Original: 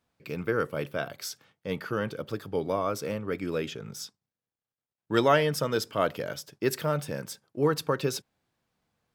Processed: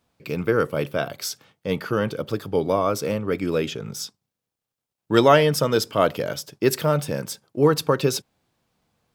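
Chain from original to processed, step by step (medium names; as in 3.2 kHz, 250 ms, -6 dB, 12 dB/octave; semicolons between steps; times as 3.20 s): peaking EQ 1.7 kHz -3.5 dB 0.75 oct; trim +7.5 dB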